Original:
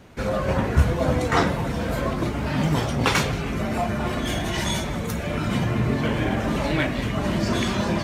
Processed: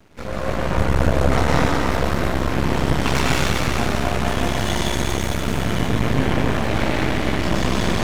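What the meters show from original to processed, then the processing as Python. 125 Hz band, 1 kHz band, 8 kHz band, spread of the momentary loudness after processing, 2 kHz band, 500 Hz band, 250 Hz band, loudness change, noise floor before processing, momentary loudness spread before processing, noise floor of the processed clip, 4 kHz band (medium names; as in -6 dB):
+2.5 dB, +3.5 dB, +4.0 dB, 4 LU, +3.5 dB, +2.5 dB, +2.0 dB, +3.0 dB, -28 dBFS, 5 LU, -24 dBFS, +3.5 dB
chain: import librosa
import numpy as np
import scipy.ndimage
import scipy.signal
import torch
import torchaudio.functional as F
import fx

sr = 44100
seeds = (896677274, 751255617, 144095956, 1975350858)

y = fx.rev_plate(x, sr, seeds[0], rt60_s=4.4, hf_ratio=1.0, predelay_ms=95, drr_db=-7.5)
y = np.maximum(y, 0.0)
y = y * librosa.db_to_amplitude(-1.0)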